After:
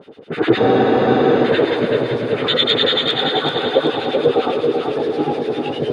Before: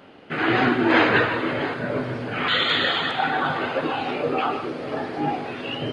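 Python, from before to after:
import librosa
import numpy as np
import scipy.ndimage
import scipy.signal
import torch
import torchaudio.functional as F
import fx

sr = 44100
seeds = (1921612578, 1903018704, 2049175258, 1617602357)

y = scipy.signal.sosfilt(scipy.signal.butter(2, 82.0, 'highpass', fs=sr, output='sos'), x)
y = fx.bass_treble(y, sr, bass_db=7, treble_db=6)
y = fx.small_body(y, sr, hz=(440.0, 3600.0), ring_ms=20, db=14)
y = fx.harmonic_tremolo(y, sr, hz=9.8, depth_pct=100, crossover_hz=1300.0)
y = fx.echo_thinned(y, sr, ms=382, feedback_pct=53, hz=190.0, wet_db=-4)
y = fx.spec_freeze(y, sr, seeds[0], at_s=0.6, hold_s=0.86)
y = y * 10.0 ** (2.0 / 20.0)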